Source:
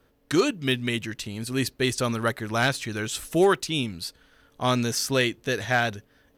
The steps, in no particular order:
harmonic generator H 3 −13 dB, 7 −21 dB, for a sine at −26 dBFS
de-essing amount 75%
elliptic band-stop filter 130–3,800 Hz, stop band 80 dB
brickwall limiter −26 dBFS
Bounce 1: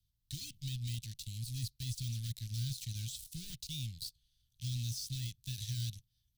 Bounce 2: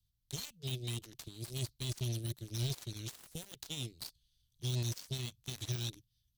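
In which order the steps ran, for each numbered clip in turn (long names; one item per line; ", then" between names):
harmonic generator, then de-essing, then brickwall limiter, then elliptic band-stop filter
de-essing, then elliptic band-stop filter, then brickwall limiter, then harmonic generator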